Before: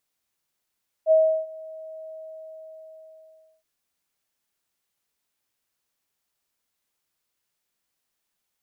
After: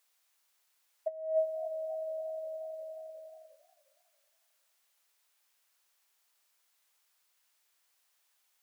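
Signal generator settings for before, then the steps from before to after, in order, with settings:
ADSR sine 636 Hz, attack 53 ms, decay 0.347 s, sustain -23.5 dB, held 1.03 s, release 1.54 s -12.5 dBFS
HPF 680 Hz 12 dB/oct; negative-ratio compressor -30 dBFS, ratio -0.5; warbling echo 0.272 s, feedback 45%, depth 205 cents, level -17.5 dB

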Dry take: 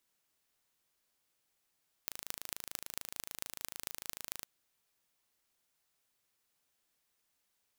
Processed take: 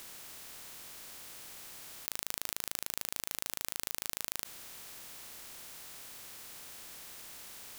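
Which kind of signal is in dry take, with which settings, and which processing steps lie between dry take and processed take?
pulse train 26.8/s, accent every 6, -9 dBFS 2.37 s
per-bin compression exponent 0.4; in parallel at -3 dB: negative-ratio compressor -47 dBFS, ratio -1

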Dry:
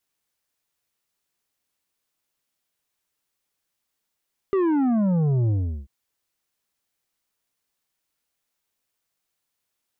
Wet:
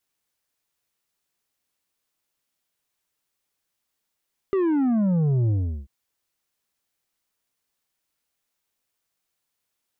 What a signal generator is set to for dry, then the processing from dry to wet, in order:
sub drop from 400 Hz, over 1.34 s, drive 8 dB, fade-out 0.38 s, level -19 dB
dynamic EQ 890 Hz, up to -5 dB, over -38 dBFS, Q 1.2

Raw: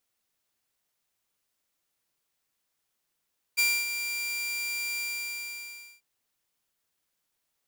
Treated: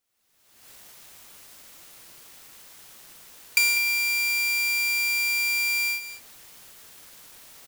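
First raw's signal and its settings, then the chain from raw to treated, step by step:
ADSR saw 2370 Hz, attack 21 ms, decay 0.261 s, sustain -9.5 dB, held 1.41 s, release 1.03 s -18 dBFS
recorder AGC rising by 44 dB/s; sample leveller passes 1; on a send: echo 0.197 s -11.5 dB

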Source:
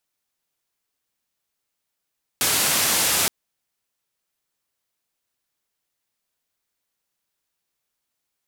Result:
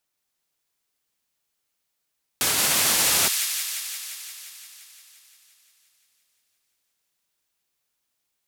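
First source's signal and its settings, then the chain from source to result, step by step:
noise band 90–13000 Hz, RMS -20.5 dBFS 0.87 s
limiter -12 dBFS; on a send: thin delay 0.174 s, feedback 73%, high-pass 2100 Hz, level -5 dB

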